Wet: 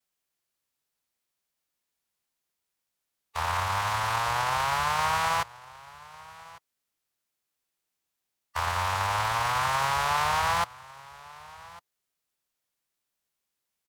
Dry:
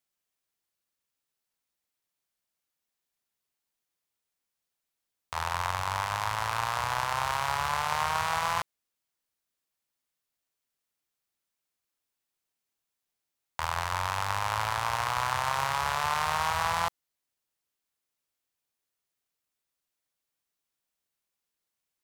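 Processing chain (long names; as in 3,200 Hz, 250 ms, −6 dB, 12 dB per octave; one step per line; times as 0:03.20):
pitch vibrato 0.54 Hz 34 cents
phase-vocoder stretch with locked phases 0.63×
single-tap delay 1,151 ms −21 dB
level +3.5 dB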